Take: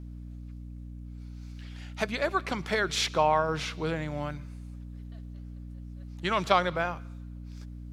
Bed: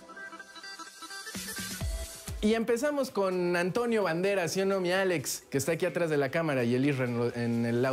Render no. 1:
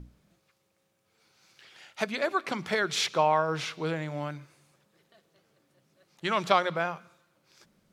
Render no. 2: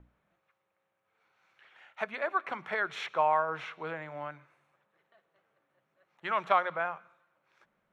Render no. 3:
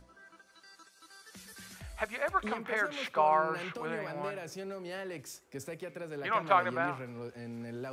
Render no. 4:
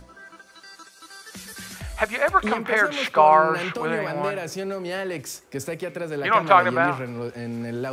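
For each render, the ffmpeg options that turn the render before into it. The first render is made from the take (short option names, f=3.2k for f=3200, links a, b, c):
-af "bandreject=f=60:t=h:w=6,bandreject=f=120:t=h:w=6,bandreject=f=180:t=h:w=6,bandreject=f=240:t=h:w=6,bandreject=f=300:t=h:w=6"
-filter_complex "[0:a]acrossover=split=590 2400:gain=0.2 1 0.0794[a][b][c];[a][b][c]amix=inputs=3:normalize=0,bandreject=f=4.8k:w=6.9"
-filter_complex "[1:a]volume=-13dB[a];[0:a][a]amix=inputs=2:normalize=0"
-af "volume=11.5dB,alimiter=limit=-2dB:level=0:latency=1"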